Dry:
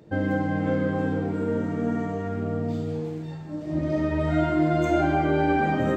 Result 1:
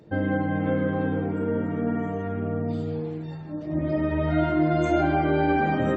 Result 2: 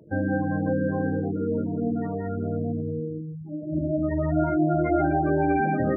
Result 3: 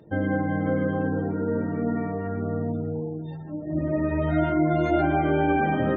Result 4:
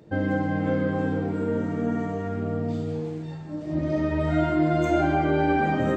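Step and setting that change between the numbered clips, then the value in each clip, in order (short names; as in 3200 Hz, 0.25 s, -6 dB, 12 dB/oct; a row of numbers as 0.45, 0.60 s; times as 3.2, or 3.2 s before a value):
spectral gate, under each frame's peak: -45, -15, -30, -60 dB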